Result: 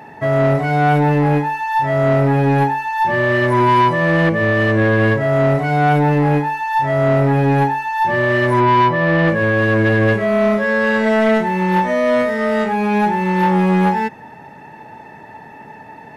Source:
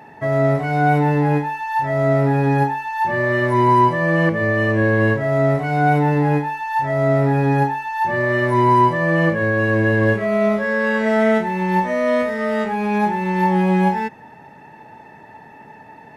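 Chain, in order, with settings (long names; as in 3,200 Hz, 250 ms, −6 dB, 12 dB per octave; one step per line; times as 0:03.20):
0:08.60–0:09.28: low-pass filter 3,600 Hz 12 dB per octave
soft clipping −12.5 dBFS, distortion −16 dB
level +4.5 dB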